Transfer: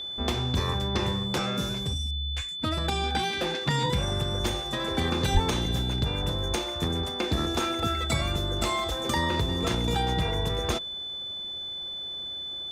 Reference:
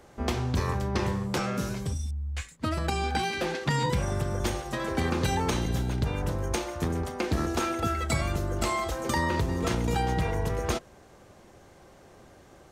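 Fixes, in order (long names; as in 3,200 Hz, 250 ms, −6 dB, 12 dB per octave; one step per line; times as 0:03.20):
notch filter 3,500 Hz, Q 30
high-pass at the plosives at 0:05.33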